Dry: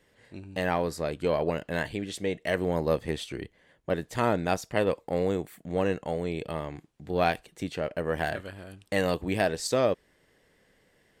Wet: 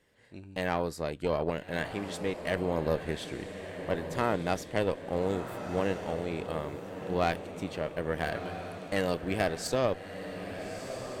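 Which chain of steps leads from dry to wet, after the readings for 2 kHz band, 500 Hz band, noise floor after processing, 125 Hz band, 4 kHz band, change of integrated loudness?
-2.5 dB, -3.0 dB, -48 dBFS, -2.0 dB, -2.5 dB, -3.5 dB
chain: tube stage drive 17 dB, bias 0.7; diffused feedback echo 1.302 s, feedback 43%, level -8.5 dB

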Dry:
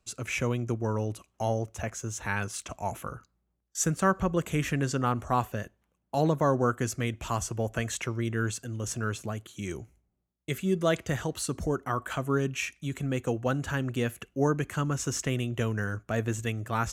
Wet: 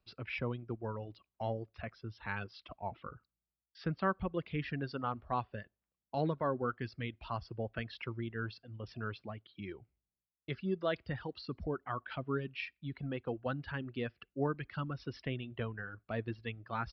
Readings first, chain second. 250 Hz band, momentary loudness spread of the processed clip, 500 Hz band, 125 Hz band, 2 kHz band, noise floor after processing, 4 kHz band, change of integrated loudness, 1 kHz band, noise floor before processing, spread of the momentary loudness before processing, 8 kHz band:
-9.5 dB, 12 LU, -8.5 dB, -10.5 dB, -8.0 dB, under -85 dBFS, -9.0 dB, -9.5 dB, -8.0 dB, -77 dBFS, 10 LU, under -40 dB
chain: reverb removal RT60 1.8 s; downsampling 11025 Hz; gain -7.5 dB

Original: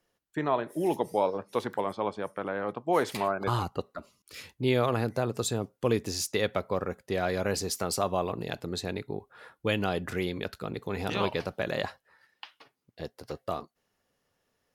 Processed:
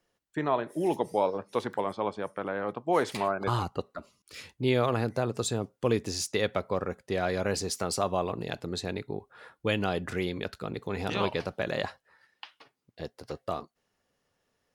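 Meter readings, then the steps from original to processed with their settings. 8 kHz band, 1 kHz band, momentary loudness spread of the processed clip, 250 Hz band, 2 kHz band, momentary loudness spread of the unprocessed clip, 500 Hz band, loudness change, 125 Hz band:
-0.5 dB, 0.0 dB, 12 LU, 0.0 dB, 0.0 dB, 12 LU, 0.0 dB, 0.0 dB, 0.0 dB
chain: bell 13000 Hz -13.5 dB 0.23 oct

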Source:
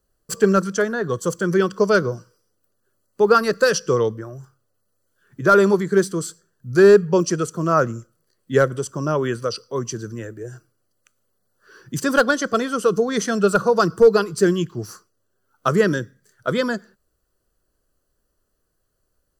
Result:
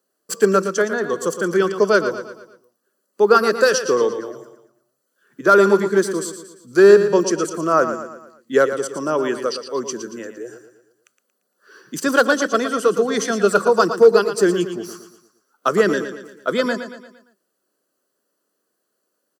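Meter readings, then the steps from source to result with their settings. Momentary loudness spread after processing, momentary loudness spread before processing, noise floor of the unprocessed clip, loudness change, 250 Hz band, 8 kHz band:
18 LU, 17 LU, -72 dBFS, +1.5 dB, 0.0 dB, +2.0 dB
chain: HPF 220 Hz 24 dB/oct; on a send: feedback echo 0.115 s, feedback 47%, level -10 dB; on the sum: gain +1.5 dB

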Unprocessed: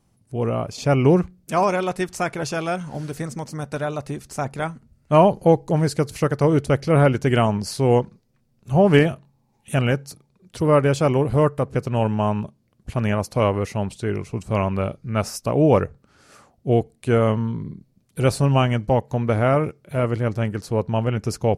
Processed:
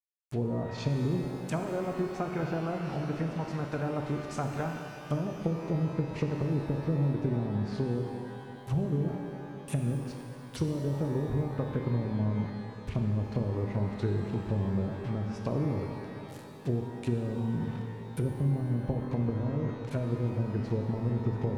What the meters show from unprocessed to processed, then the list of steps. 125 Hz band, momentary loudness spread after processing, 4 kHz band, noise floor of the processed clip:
-7.5 dB, 6 LU, -15.0 dB, -44 dBFS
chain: compressor 6:1, threshold -21 dBFS, peak gain reduction 12 dB; bit-crush 7-bit; bell 600 Hz -4 dB; treble ducked by the level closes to 330 Hz, closed at -21 dBFS; shimmer reverb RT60 2.7 s, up +12 st, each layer -8 dB, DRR 3 dB; gain -4 dB

